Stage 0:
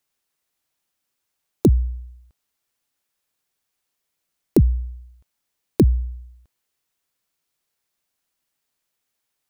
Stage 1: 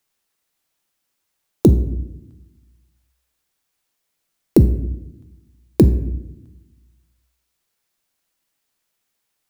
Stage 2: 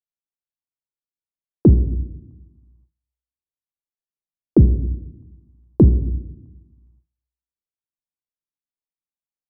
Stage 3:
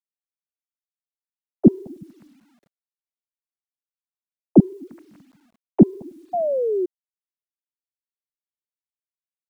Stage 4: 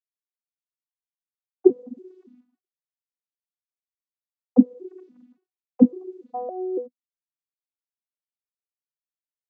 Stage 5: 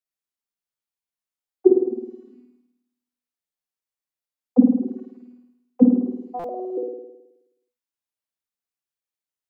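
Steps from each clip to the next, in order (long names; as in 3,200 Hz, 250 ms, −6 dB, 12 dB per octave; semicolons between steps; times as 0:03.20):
convolution reverb RT60 0.85 s, pre-delay 6 ms, DRR 9 dB; level +3 dB
Butterworth low-pass 1,200 Hz 72 dB per octave; noise gate with hold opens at −49 dBFS; low-shelf EQ 380 Hz +8.5 dB; level −6.5 dB
three sine waves on the formant tracks; sound drawn into the spectrogram fall, 0:06.33–0:06.86, 350–730 Hz −18 dBFS; bit reduction 10 bits; level −3.5 dB
vocoder with an arpeggio as carrier bare fifth, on B3, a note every 282 ms; downward expander −47 dBFS; level −2 dB
mains-hum notches 50/100/150 Hz; flutter between parallel walls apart 9.1 metres, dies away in 0.95 s; buffer that repeats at 0:06.39, samples 256, times 8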